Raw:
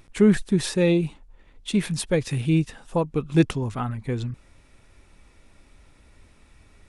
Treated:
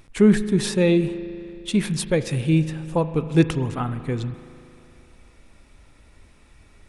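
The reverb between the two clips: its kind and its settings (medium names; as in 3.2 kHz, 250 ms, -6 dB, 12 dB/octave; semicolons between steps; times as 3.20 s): spring tank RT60 2.7 s, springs 38 ms, chirp 55 ms, DRR 12 dB; trim +1.5 dB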